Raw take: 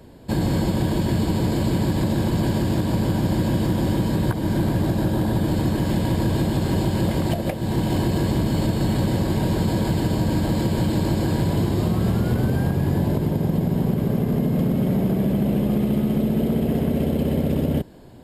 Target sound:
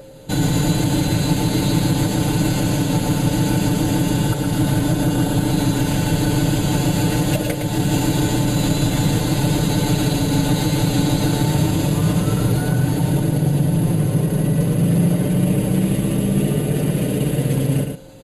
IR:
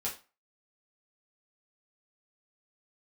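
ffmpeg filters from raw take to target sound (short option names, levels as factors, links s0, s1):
-filter_complex "[0:a]aeval=exprs='val(0)+0.0224*sin(2*PI*580*n/s)':c=same,asetrate=40440,aresample=44100,atempo=1.09051,highshelf=f=2600:g=9.5,aecho=1:1:6.7:0.75,aecho=1:1:112:0.501,asplit=2[s0][s1];[1:a]atrim=start_sample=2205,adelay=77[s2];[s1][s2]afir=irnorm=-1:irlink=0,volume=0.075[s3];[s0][s3]amix=inputs=2:normalize=0"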